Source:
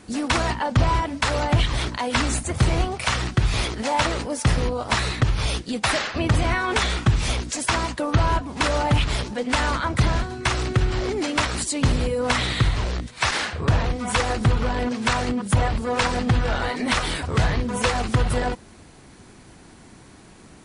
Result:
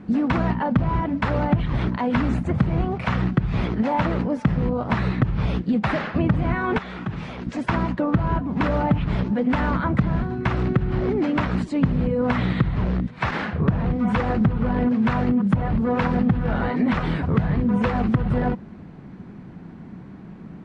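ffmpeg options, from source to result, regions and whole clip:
-filter_complex "[0:a]asettb=1/sr,asplit=3[a][b][c];[a]atrim=end=6.784[d];[b]atrim=start=6.78:end=7.47,asetpts=PTS-STARTPTS,afade=t=in:d=0.004:c=qsin,afade=t=out:st=0.686:d=0.004:c=qsin,highpass=f=110:p=1,lowshelf=f=350:g=-8.5,acompressor=threshold=-29dB:ratio=5:attack=3.2:release=140:knee=1:detection=peak[e];[c]atrim=start=7.466[f];[d][e]acrossfade=d=0.004:c1=hsin:c2=qsin[g];[g][f]acrossfade=d=0.004:c1=qsin:c2=hsin,equalizer=f=180:t=o:w=1.1:g=14.5,acompressor=threshold=-16dB:ratio=6,lowpass=1.9k"

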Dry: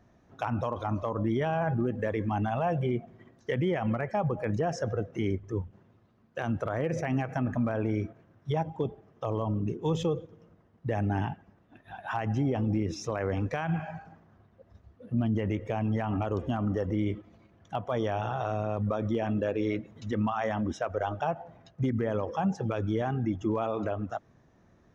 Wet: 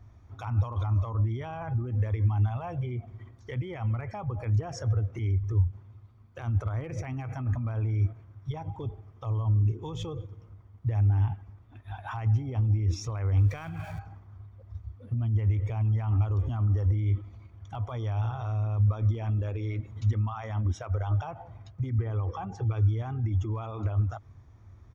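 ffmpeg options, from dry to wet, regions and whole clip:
-filter_complex "[0:a]asettb=1/sr,asplit=3[a][b][c];[a]atrim=end=13.384[d];[b]atrim=start=13.38:end=13.99,asetpts=PTS-STARTPTS,afade=t=in:d=0.004:c=qsin,afade=t=out:st=0.606:d=0.004:c=qsin,aeval=exprs='val(0)+0.5*0.00473*sgn(val(0))':c=same,equalizer=f=880:w=3.7:g=-7.5[e];[c]atrim=start=13.986[f];[d][e]acrossfade=d=0.004:c1=hsin:c2=qsin[g];[g][f]acrossfade=d=0.004:c1=qsin:c2=hsin,asettb=1/sr,asplit=3[h][i][j];[h]atrim=end=21.984[k];[i]atrim=start=21.98:end=22.89,asetpts=PTS-STARTPTS,afade=t=in:d=0.004:c=qsin,afade=t=out:st=0.906:d=0.004:c=qsin,lowpass=f=3.7k:p=1,aecho=1:1:2.6:0.36,atrim=end_sample=40131[l];[j]atrim=start=22.886[m];[k][l]acrossfade=d=0.004:c1=hsin:c2=qsin[n];[n][m]acrossfade=d=0.004:c1=qsin:c2=hsin,aecho=1:1:0.9:0.41,alimiter=level_in=4dB:limit=-24dB:level=0:latency=1:release=76,volume=-4dB,lowshelf=f=130:t=q:w=3:g=8.5"

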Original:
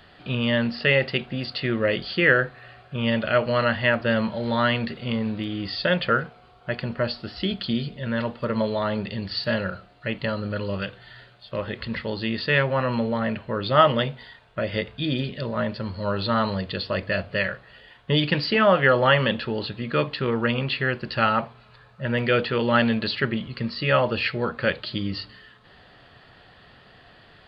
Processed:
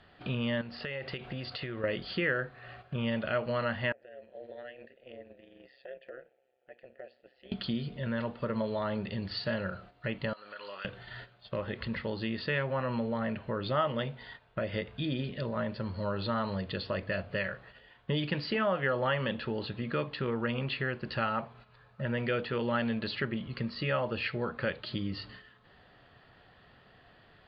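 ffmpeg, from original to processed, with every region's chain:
-filter_complex "[0:a]asettb=1/sr,asplit=3[a][b][c];[a]atrim=end=0.614[d];[b]atrim=start=0.61:end=1.84,asetpts=PTS-STARTPTS,afade=t=in:d=0.004:c=qsin,afade=t=out:st=1.226:d=0.004:c=qsin,equalizer=f=220:w=1.7:g=-7.5,acompressor=threshold=-32dB:ratio=5:attack=3.2:release=140:knee=1:detection=peak[e];[c]atrim=start=1.836[f];[d][e]acrossfade=d=0.004:c1=hsin:c2=qsin[g];[g][f]acrossfade=d=0.004:c1=qsin:c2=hsin,asettb=1/sr,asplit=3[h][i][j];[h]atrim=end=3.924[k];[i]atrim=start=3.92:end=7.52,asetpts=PTS-STARTPTS,afade=t=in:d=0.004:c=qsin,afade=t=out:st=3.596:d=0.004:c=qsin,asplit=3[l][m][n];[l]bandpass=f=530:t=q:w=8,volume=0dB[o];[m]bandpass=f=1.84k:t=q:w=8,volume=-6dB[p];[n]bandpass=f=2.48k:t=q:w=8,volume=-9dB[q];[o][p][q]amix=inputs=3:normalize=0,acompressor=threshold=-41dB:ratio=6:attack=3.2:release=140:knee=1:detection=peak,tremolo=f=130:d=0.75[r];[j]atrim=start=7.516[s];[k][r]acrossfade=d=0.004:c1=hsin:c2=qsin[t];[t][s]acrossfade=d=0.004:c1=qsin:c2=hsin,asettb=1/sr,asplit=3[u][v][w];[u]atrim=end=10.334[x];[v]atrim=start=10.33:end=10.85,asetpts=PTS-STARTPTS,afade=t=in:d=0.004:c=qsin,afade=t=out:st=0.516:d=0.004:c=qsin,highpass=1k,acompressor=threshold=-41dB:ratio=4:attack=3.2:release=140:knee=1:detection=peak[y];[w]atrim=start=10.846[z];[x][y]acrossfade=d=0.004:c1=hsin:c2=qsin[aa];[aa][z]acrossfade=d=0.004:c1=qsin:c2=hsin,aemphasis=mode=reproduction:type=50fm,agate=range=-10dB:threshold=-47dB:ratio=16:detection=peak,acompressor=threshold=-41dB:ratio=2,volume=2.5dB"

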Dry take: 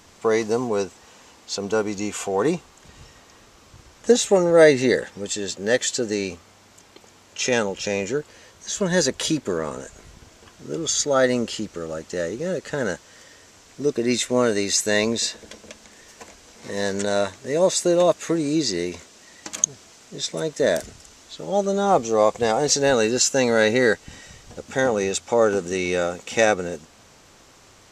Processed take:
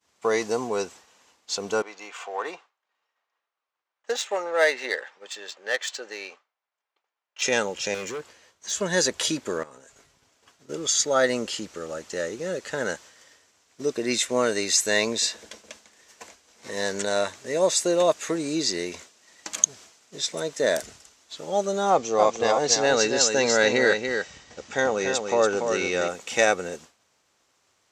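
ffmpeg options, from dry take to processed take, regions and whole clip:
-filter_complex "[0:a]asettb=1/sr,asplit=3[a][b][c];[a]atrim=end=1.824[d];[b]atrim=start=1.82:end=7.42,asetpts=PTS-STARTPTS,afade=t=in:d=0.004:c=qsin,afade=t=out:st=5.596:d=0.004:c=qsin,adynamicsmooth=sensitivity=1:basefreq=2.8k,highpass=750[e];[c]atrim=start=7.416[f];[d][e]acrossfade=d=0.004:c1=hsin:c2=qsin[g];[g][f]acrossfade=d=0.004:c1=qsin:c2=hsin,asettb=1/sr,asplit=3[h][i][j];[h]atrim=end=7.944[k];[i]atrim=start=7.94:end=8.71,asetpts=PTS-STARTPTS,afade=t=in:d=0.004:c=qsin,afade=t=out:st=0.766:d=0.004:c=qsin,highshelf=f=7.8k:g=-2.5,asoftclip=type=hard:threshold=-26dB[l];[j]atrim=start=8.706[m];[k][l]acrossfade=d=0.004:c1=hsin:c2=qsin[n];[n][m]acrossfade=d=0.004:c1=qsin:c2=hsin,asettb=1/sr,asplit=3[o][p][q];[o]atrim=end=9.634[r];[p]atrim=start=9.63:end=10.69,asetpts=PTS-STARTPTS,afade=t=in:d=0.004:c=qsin,afade=t=out:st=1.056:d=0.004:c=qsin,aecho=1:1:7.3:0.38,atrim=end_sample=46746,acompressor=threshold=-39dB:ratio=8:attack=3.2:release=140:knee=1:detection=peak[s];[q]atrim=start=10.686[t];[r][s]acrossfade=d=0.004:c1=hsin:c2=qsin[u];[u][t]acrossfade=d=0.004:c1=qsin:c2=hsin,asettb=1/sr,asplit=3[v][w][x];[v]atrim=end=21.904[y];[w]atrim=start=21.9:end=26.08,asetpts=PTS-STARTPTS,afade=t=in:d=0.004:c=qsin,afade=t=out:st=4.176:d=0.004:c=qsin,lowpass=f=7k:w=0.5412,lowpass=f=7k:w=1.3066,aecho=1:1:286:0.501,atrim=end_sample=184338[z];[x]atrim=start=26.076[aa];[y][z]acrossfade=d=0.004:c1=hsin:c2=qsin[ab];[ab][aa]acrossfade=d=0.004:c1=qsin:c2=hsin,highpass=47,lowshelf=f=350:g=-10,agate=range=-33dB:threshold=-42dB:ratio=3:detection=peak"

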